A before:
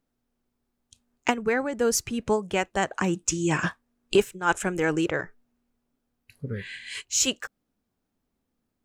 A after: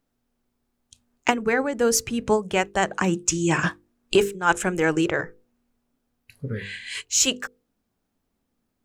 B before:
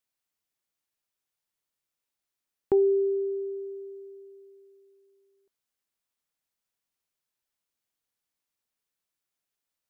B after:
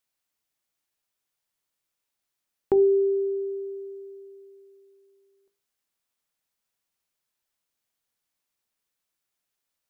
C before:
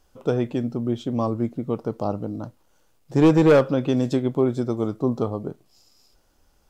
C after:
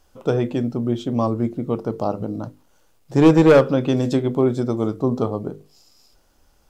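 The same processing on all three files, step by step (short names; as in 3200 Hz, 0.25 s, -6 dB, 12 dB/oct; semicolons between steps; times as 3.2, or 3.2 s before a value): notches 50/100/150/200/250/300/350/400/450/500 Hz; gain +3.5 dB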